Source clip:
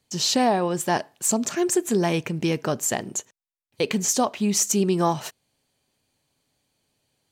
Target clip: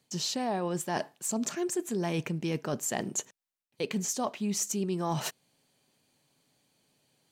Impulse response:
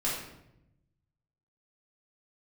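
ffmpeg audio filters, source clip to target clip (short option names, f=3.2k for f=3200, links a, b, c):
-af "lowshelf=f=110:t=q:w=1.5:g=-8.5,areverse,acompressor=threshold=-31dB:ratio=5,areverse,volume=1.5dB"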